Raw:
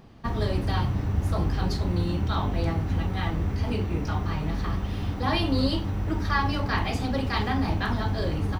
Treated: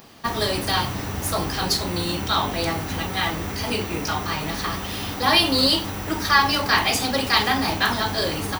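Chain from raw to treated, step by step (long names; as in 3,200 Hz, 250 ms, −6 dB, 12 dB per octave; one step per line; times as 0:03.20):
RIAA equalisation recording
level +8 dB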